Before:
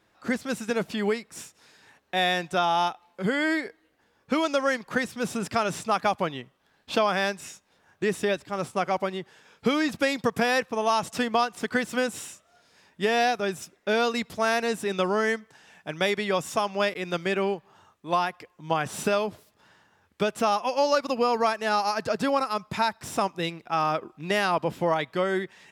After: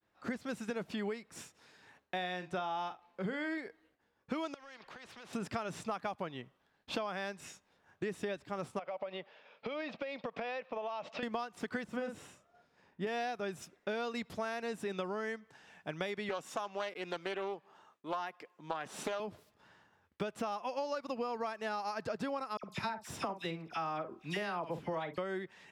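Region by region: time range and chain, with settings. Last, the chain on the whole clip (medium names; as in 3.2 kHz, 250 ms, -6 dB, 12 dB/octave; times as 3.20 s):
2.17–3.58 s: treble shelf 7.7 kHz -8 dB + doubling 44 ms -12.5 dB
4.54–5.33 s: three-band isolator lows -13 dB, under 410 Hz, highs -21 dB, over 4.3 kHz + compression 5:1, threshold -41 dBFS + spectrum-flattening compressor 2:1
8.79–11.23 s: cabinet simulation 310–4400 Hz, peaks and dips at 350 Hz -8 dB, 590 Hz +10 dB, 1.6 kHz -4 dB, 2.5 kHz +5 dB + compression 10:1, threshold -29 dBFS
11.84–13.07 s: treble shelf 2.2 kHz -11 dB + doubling 45 ms -6 dB
16.29–19.20 s: high-pass 250 Hz + loudspeaker Doppler distortion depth 0.33 ms
22.57–25.18 s: doubling 49 ms -12 dB + phase dispersion lows, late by 65 ms, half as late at 2 kHz
whole clip: expander -60 dBFS; treble shelf 5 kHz -8 dB; compression 5:1, threshold -31 dBFS; trim -4 dB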